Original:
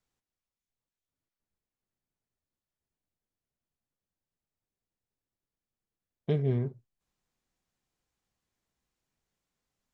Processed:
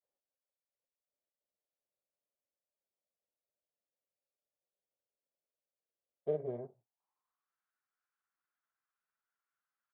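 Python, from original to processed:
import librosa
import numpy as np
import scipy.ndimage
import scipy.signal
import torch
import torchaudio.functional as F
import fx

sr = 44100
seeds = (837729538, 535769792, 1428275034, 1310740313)

y = fx.granulator(x, sr, seeds[0], grain_ms=100.0, per_s=20.0, spray_ms=22.0, spread_st=0)
y = fx.cheby_harmonics(y, sr, harmonics=(8,), levels_db=(-33,), full_scale_db=-17.0)
y = fx.filter_sweep_bandpass(y, sr, from_hz=570.0, to_hz=1400.0, start_s=6.49, end_s=7.59, q=4.8)
y = y * librosa.db_to_amplitude(6.0)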